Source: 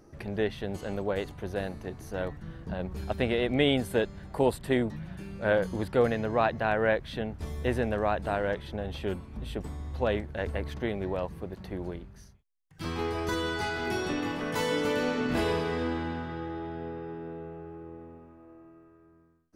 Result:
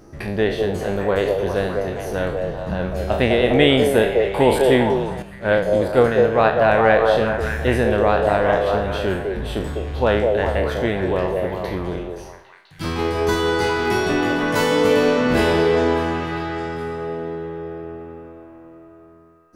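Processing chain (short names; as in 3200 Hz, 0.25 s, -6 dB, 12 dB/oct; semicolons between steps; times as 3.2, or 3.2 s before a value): spectral trails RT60 0.53 s; delay with a stepping band-pass 0.202 s, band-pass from 510 Hz, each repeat 0.7 oct, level 0 dB; 5.22–6.62 upward expander 1.5:1, over -36 dBFS; gain +8.5 dB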